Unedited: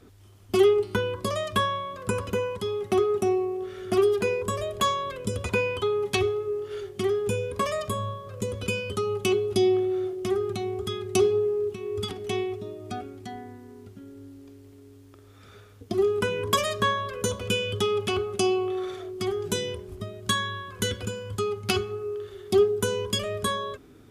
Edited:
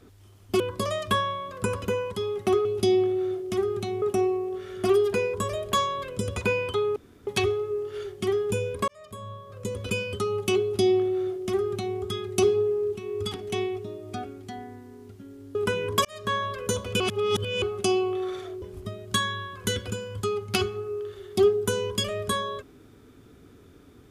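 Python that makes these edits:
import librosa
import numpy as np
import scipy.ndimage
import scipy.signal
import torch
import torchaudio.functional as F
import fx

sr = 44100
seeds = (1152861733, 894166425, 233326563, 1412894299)

y = fx.edit(x, sr, fx.cut(start_s=0.6, length_s=0.45),
    fx.insert_room_tone(at_s=6.04, length_s=0.31),
    fx.fade_in_span(start_s=7.65, length_s=0.98),
    fx.duplicate(start_s=9.38, length_s=1.37, to_s=3.1),
    fx.cut(start_s=14.32, length_s=1.78),
    fx.fade_in_span(start_s=16.6, length_s=0.39),
    fx.reverse_span(start_s=17.55, length_s=0.62),
    fx.cut(start_s=19.17, length_s=0.6), tone=tone)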